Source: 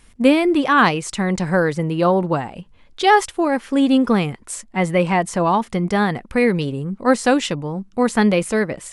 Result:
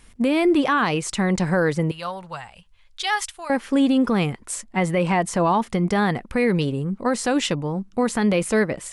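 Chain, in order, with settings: 1.91–3.5 passive tone stack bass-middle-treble 10-0-10; limiter -11.5 dBFS, peak gain reduction 9 dB

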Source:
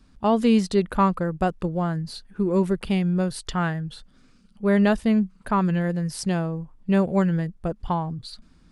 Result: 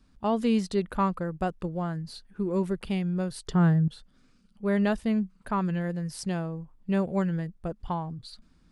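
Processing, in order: 3.48–3.88 fifteen-band EQ 160 Hz +12 dB, 400 Hz +11 dB, 2500 Hz -6 dB; gain -6 dB

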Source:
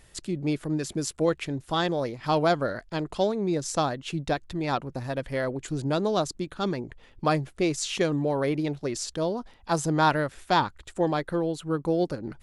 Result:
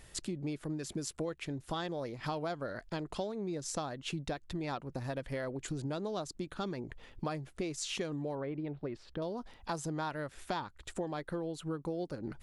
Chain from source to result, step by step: compressor 6:1, threshold -35 dBFS, peak gain reduction 17 dB; 8.35–9.22 air absorption 430 m

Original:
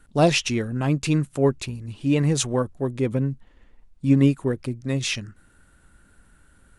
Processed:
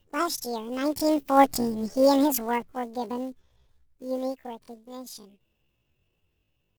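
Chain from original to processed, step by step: block floating point 5-bit; Doppler pass-by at 1.72, 11 m/s, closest 3.3 m; pitch shift +11.5 st; gain +5 dB

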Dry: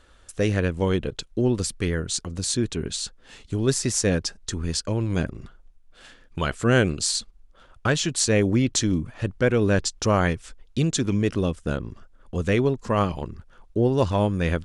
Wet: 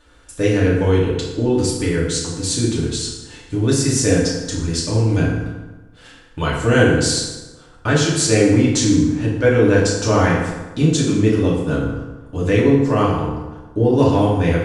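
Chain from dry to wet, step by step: FDN reverb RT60 1.2 s, low-frequency decay 1×, high-frequency decay 0.65×, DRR -6 dB; gain -1 dB

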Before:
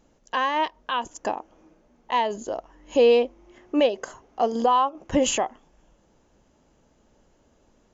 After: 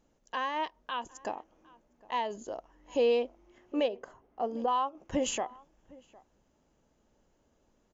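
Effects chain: 3.88–4.68 LPF 1300 Hz 6 dB/oct; outdoor echo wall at 130 m, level -23 dB; gain -9 dB

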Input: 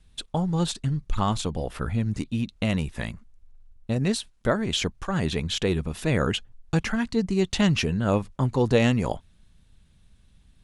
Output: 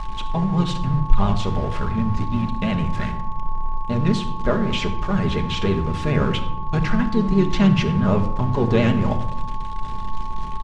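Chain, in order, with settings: zero-crossing step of -31 dBFS; low shelf 63 Hz +9.5 dB; de-hum 85.61 Hz, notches 3; vibrato 9 Hz 97 cents; whine 1100 Hz -29 dBFS; harmoniser -4 st -7 dB; air absorption 130 m; on a send: reverb RT60 0.85 s, pre-delay 5 ms, DRR 5 dB; on the sum: gain -1 dB

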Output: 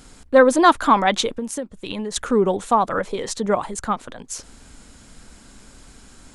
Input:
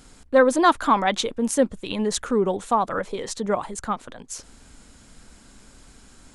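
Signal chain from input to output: 1.29–2.16 compressor 16:1, threshold -28 dBFS, peak gain reduction 16 dB; gain +3.5 dB

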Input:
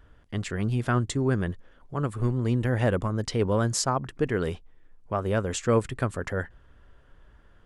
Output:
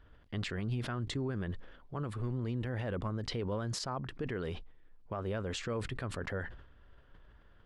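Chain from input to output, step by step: resonant high shelf 5600 Hz -8 dB, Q 1.5; limiter -22 dBFS, peak gain reduction 10.5 dB; sustainer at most 75 dB/s; gain -5.5 dB

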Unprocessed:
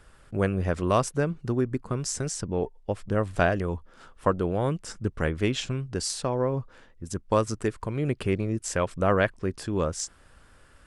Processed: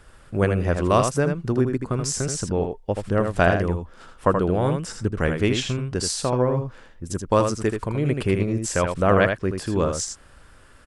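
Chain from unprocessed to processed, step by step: echo 80 ms -6 dB; gain +4 dB

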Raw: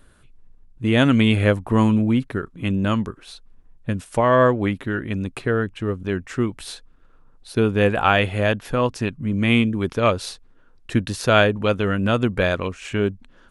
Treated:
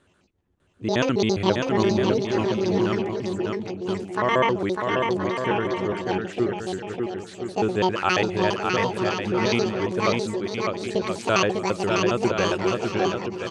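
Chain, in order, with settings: trilling pitch shifter +10.5 st, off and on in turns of 68 ms; speaker cabinet 110–8100 Hz, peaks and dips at 250 Hz -4 dB, 360 Hz +7 dB, 5000 Hz -4 dB; bouncing-ball echo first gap 0.6 s, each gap 0.7×, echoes 5; gain -5 dB

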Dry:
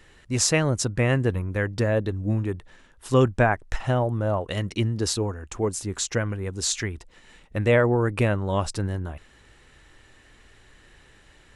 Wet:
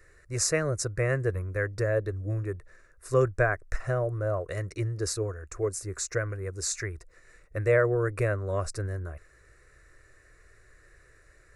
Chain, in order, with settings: fixed phaser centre 860 Hz, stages 6; gain -2 dB

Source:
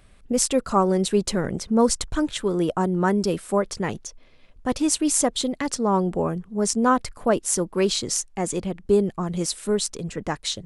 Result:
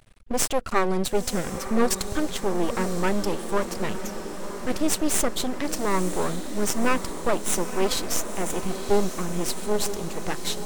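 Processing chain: half-wave rectifier; diffused feedback echo 0.981 s, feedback 68%, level -10 dB; gain +2 dB

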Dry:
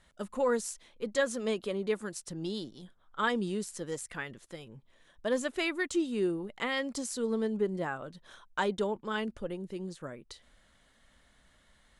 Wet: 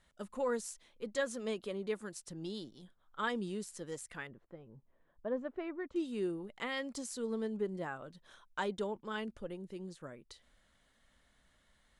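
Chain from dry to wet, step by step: 4.27–5.96 LPF 1100 Hz 12 dB/oct; gain -6 dB

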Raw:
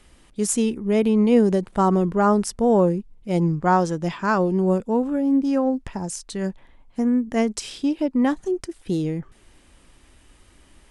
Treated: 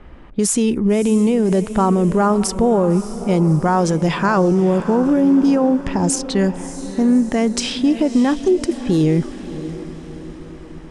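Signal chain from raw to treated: in parallel at -0.5 dB: compressor, threshold -26 dBFS, peak gain reduction 14 dB; on the sum: limiter -16 dBFS, peak gain reduction 11.5 dB; low-pass opened by the level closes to 1300 Hz, open at -20.5 dBFS; diffused feedback echo 0.608 s, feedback 53%, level -13 dB; gain +7.5 dB

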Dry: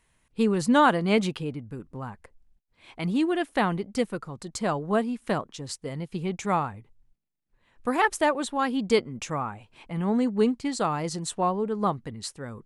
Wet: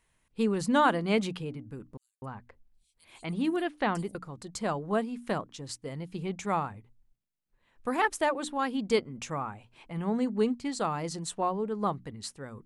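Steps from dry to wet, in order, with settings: notches 60/120/180/240/300 Hz; 1.97–4.15 bands offset in time highs, lows 0.25 s, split 5700 Hz; gain -4 dB

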